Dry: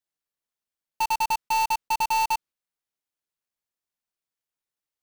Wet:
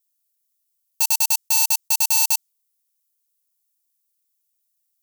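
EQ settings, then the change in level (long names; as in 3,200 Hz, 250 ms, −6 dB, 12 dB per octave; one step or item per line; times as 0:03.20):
first difference
dynamic equaliser 6,500 Hz, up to +4 dB, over −48 dBFS, Q 1.3
high-shelf EQ 4,200 Hz +9 dB
+6.5 dB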